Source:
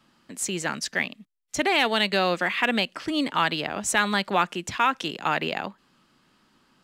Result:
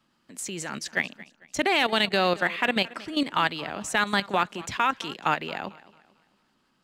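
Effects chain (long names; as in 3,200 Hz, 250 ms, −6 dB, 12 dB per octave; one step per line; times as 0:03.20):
output level in coarse steps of 12 dB
feedback echo with a swinging delay time 223 ms, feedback 38%, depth 79 cents, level −20 dB
level +2 dB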